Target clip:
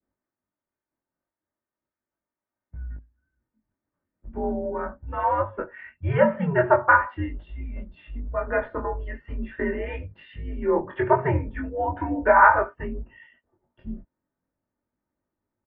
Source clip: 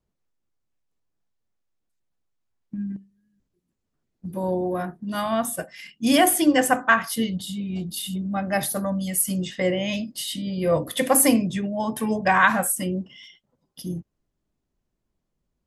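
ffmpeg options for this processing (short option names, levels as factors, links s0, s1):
-filter_complex "[0:a]highpass=f=250:t=q:w=0.5412,highpass=f=250:t=q:w=1.307,lowpass=f=2100:t=q:w=0.5176,lowpass=f=2100:t=q:w=0.7071,lowpass=f=2100:t=q:w=1.932,afreqshift=-140,aecho=1:1:3.3:0.41,asplit=2[s0][s1];[s1]acompressor=threshold=0.0282:ratio=6,volume=0.794[s2];[s0][s2]amix=inputs=2:normalize=0,adynamicequalizer=threshold=0.0224:dfrequency=970:dqfactor=1.3:tfrequency=970:tqfactor=1.3:attack=5:release=100:ratio=0.375:range=3.5:mode=boostabove:tftype=bell,flanger=delay=19.5:depth=3.2:speed=0.39"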